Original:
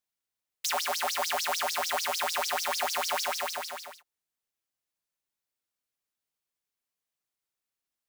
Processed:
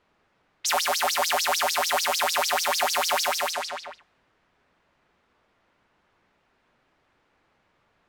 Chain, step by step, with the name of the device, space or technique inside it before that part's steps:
cassette deck with a dynamic noise filter (white noise bed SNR 29 dB; low-pass that shuts in the quiet parts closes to 1,600 Hz, open at −28 dBFS)
level +6 dB

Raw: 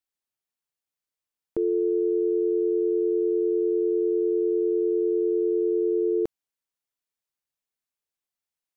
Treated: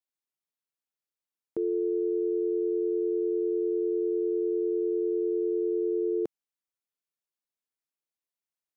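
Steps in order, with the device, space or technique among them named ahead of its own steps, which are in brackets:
filter by subtraction (in parallel: low-pass filter 230 Hz 12 dB per octave + polarity inversion)
on the sum: level −6 dB

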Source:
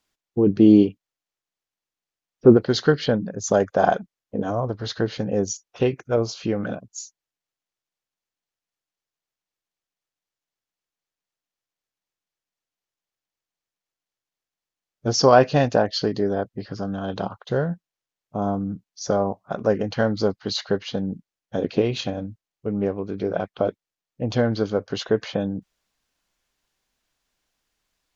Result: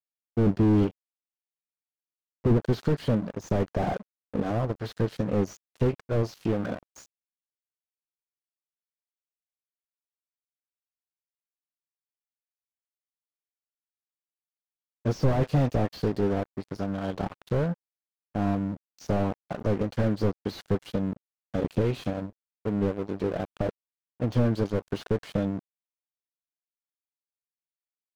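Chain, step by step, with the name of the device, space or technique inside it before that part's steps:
early transistor amplifier (dead-zone distortion −36.5 dBFS; slew-rate limiting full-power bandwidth 32 Hz)

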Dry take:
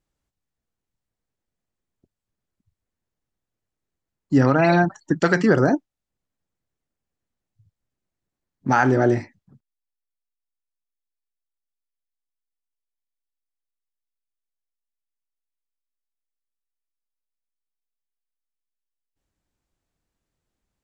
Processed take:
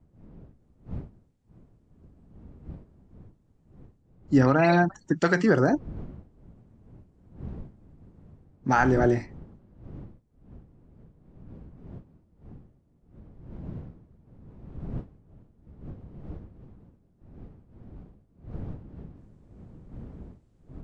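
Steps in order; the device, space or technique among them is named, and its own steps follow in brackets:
smartphone video outdoors (wind on the microphone 170 Hz −42 dBFS; automatic gain control gain up to 9 dB; level −7 dB; AAC 64 kbit/s 22,050 Hz)

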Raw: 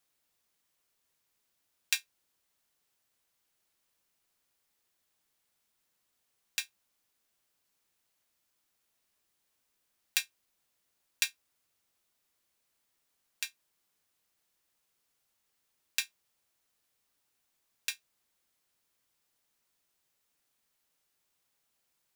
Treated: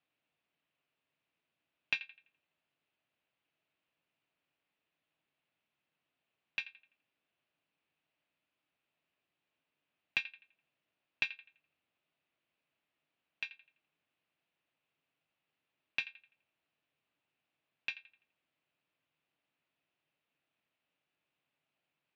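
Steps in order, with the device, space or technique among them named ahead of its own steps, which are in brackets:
analogue delay pedal into a guitar amplifier (bucket-brigade delay 84 ms, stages 2,048, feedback 35%, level −15 dB; tube saturation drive 11 dB, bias 0.4; loudspeaker in its box 76–3,500 Hz, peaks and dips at 150 Hz +8 dB, 290 Hz +6 dB, 640 Hz +5 dB, 2,600 Hz +7 dB)
level −3 dB

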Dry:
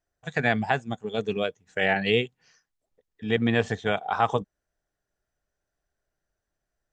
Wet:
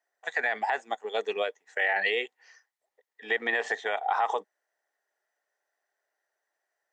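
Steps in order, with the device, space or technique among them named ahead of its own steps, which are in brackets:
laptop speaker (high-pass filter 410 Hz 24 dB per octave; parametric band 860 Hz +7 dB 0.59 octaves; parametric band 1,900 Hz +12 dB 0.27 octaves; brickwall limiter −16.5 dBFS, peak gain reduction 12 dB)

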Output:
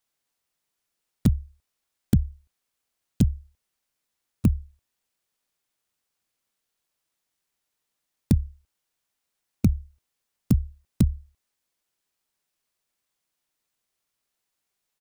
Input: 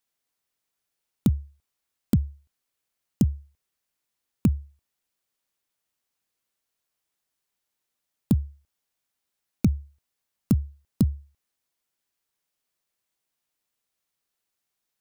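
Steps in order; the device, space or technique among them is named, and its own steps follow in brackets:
octave pedal (pitch-shifted copies added −12 semitones −5 dB)

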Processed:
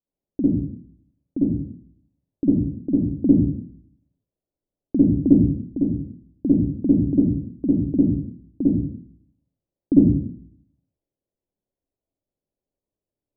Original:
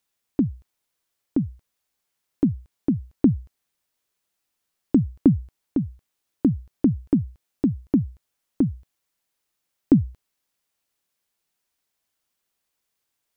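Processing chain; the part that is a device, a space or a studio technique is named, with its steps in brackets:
next room (low-pass filter 610 Hz 24 dB per octave; convolution reverb RT60 0.60 s, pre-delay 44 ms, DRR −8.5 dB)
level −6.5 dB

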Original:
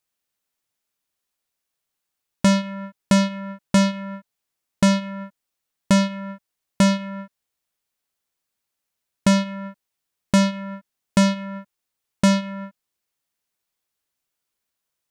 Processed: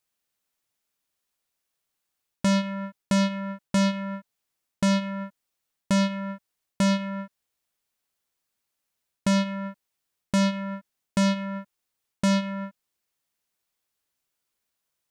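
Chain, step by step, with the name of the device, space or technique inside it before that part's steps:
compression on the reversed sound (reversed playback; downward compressor 6 to 1, threshold −21 dBFS, peak gain reduction 7.5 dB; reversed playback)

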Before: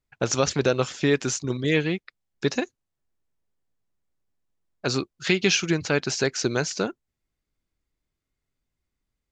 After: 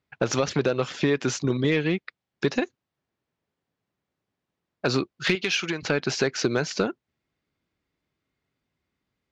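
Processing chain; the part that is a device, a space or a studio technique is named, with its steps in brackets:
AM radio (band-pass filter 110–4,000 Hz; downward compressor 6 to 1, threshold −25 dBFS, peak gain reduction 9.5 dB; soft clipping −17 dBFS, distortion −20 dB)
0:05.35–0:05.83: low-shelf EQ 390 Hz −11.5 dB
level +7 dB

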